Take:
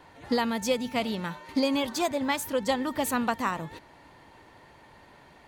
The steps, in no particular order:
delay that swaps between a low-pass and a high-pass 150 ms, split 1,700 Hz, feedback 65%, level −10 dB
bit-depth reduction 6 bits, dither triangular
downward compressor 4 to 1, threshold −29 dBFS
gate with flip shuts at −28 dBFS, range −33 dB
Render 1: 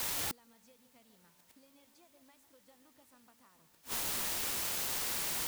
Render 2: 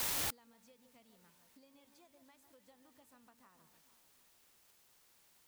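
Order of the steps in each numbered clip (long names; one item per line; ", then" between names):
downward compressor, then delay that swaps between a low-pass and a high-pass, then bit-depth reduction, then gate with flip
bit-depth reduction, then delay that swaps between a low-pass and a high-pass, then downward compressor, then gate with flip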